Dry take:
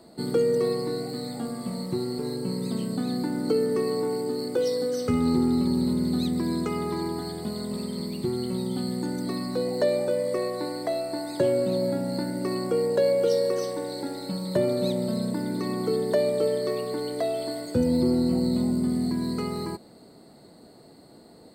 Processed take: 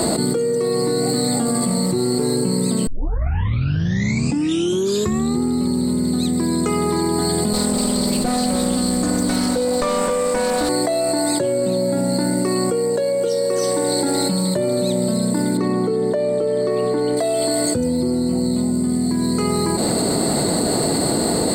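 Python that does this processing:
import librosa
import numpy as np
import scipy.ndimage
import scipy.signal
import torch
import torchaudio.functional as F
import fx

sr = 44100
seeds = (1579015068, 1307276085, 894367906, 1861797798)

y = fx.lower_of_two(x, sr, delay_ms=4.0, at=(7.53, 10.69))
y = fx.lowpass(y, sr, hz=1700.0, slope=6, at=(15.57, 17.17))
y = fx.edit(y, sr, fx.tape_start(start_s=2.87, length_s=2.54), tone=tone)
y = fx.peak_eq(y, sr, hz=7900.0, db=12.0, octaves=0.42)
y = fx.env_flatten(y, sr, amount_pct=100)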